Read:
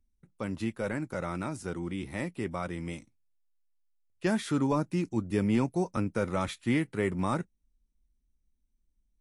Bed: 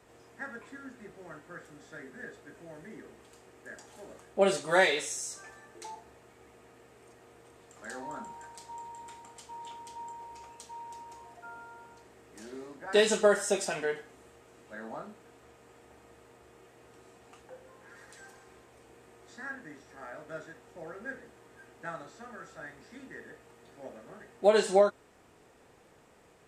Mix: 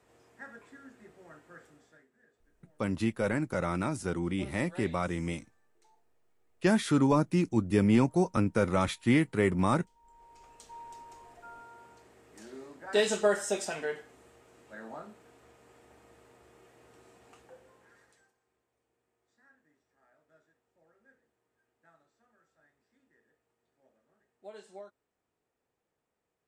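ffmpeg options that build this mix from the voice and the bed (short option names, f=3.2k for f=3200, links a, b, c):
-filter_complex "[0:a]adelay=2400,volume=3dB[a];[1:a]volume=15dB,afade=t=out:st=1.63:d=0.45:silence=0.133352,afade=t=in:st=10.02:d=0.77:silence=0.0891251,afade=t=out:st=17.32:d=1.01:silence=0.0794328[b];[a][b]amix=inputs=2:normalize=0"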